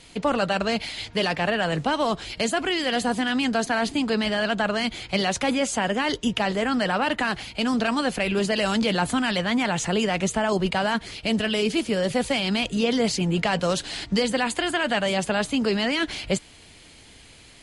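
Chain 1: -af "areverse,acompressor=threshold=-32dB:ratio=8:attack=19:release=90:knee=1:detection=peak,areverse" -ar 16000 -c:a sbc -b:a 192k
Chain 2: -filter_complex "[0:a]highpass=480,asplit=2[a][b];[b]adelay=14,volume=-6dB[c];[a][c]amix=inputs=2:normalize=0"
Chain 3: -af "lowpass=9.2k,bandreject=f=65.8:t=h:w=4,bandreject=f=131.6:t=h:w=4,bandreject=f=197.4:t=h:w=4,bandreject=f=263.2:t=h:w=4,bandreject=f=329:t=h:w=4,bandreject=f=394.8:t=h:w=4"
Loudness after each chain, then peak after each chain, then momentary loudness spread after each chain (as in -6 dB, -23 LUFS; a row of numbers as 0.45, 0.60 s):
-32.5, -25.5, -24.5 LUFS; -17.5, -10.5, -10.5 dBFS; 2, 4, 3 LU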